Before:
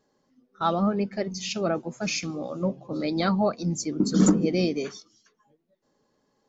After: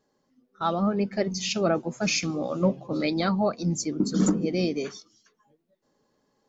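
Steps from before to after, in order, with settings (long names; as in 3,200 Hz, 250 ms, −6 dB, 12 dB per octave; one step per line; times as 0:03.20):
0:02.48–0:03.14: dynamic equaliser 2,500 Hz, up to +6 dB, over −48 dBFS, Q 0.82
speech leveller within 4 dB 0.5 s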